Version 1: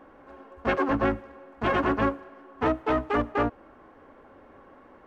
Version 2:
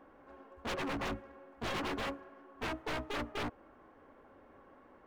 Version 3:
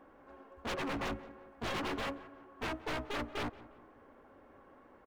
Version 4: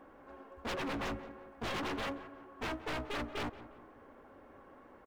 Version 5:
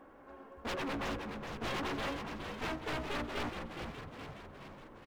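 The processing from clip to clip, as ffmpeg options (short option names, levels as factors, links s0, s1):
-af "aeval=exprs='0.0631*(abs(mod(val(0)/0.0631+3,4)-2)-1)':c=same,volume=0.422"
-filter_complex "[0:a]asplit=2[s0][s1];[s1]adelay=177,lowpass=f=2000:p=1,volume=0.133,asplit=2[s2][s3];[s3]adelay=177,lowpass=f=2000:p=1,volume=0.47,asplit=2[s4][s5];[s5]adelay=177,lowpass=f=2000:p=1,volume=0.47,asplit=2[s6][s7];[s7]adelay=177,lowpass=f=2000:p=1,volume=0.47[s8];[s0][s2][s4][s6][s8]amix=inputs=5:normalize=0"
-af "asoftclip=type=hard:threshold=0.0133,volume=1.33"
-filter_complex "[0:a]asplit=9[s0][s1][s2][s3][s4][s5][s6][s7][s8];[s1]adelay=417,afreqshift=-69,volume=0.473[s9];[s2]adelay=834,afreqshift=-138,volume=0.288[s10];[s3]adelay=1251,afreqshift=-207,volume=0.176[s11];[s4]adelay=1668,afreqshift=-276,volume=0.107[s12];[s5]adelay=2085,afreqshift=-345,volume=0.0653[s13];[s6]adelay=2502,afreqshift=-414,volume=0.0398[s14];[s7]adelay=2919,afreqshift=-483,volume=0.0243[s15];[s8]adelay=3336,afreqshift=-552,volume=0.0148[s16];[s0][s9][s10][s11][s12][s13][s14][s15][s16]amix=inputs=9:normalize=0"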